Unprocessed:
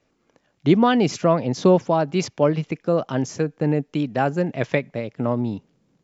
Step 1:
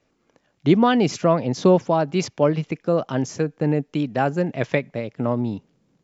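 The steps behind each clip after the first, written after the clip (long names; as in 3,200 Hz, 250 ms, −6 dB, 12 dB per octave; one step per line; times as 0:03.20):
no processing that can be heard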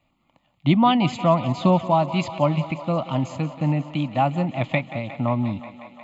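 phaser with its sweep stopped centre 1,600 Hz, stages 6
feedback echo with a high-pass in the loop 179 ms, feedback 83%, high-pass 230 Hz, level −15 dB
level +3.5 dB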